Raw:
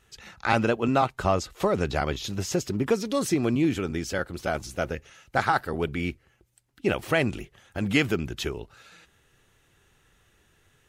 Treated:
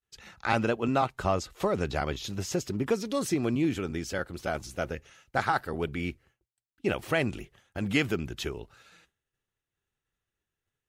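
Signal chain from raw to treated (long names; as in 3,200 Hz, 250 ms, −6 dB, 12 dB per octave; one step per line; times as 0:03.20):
downward expander −49 dBFS
level −3.5 dB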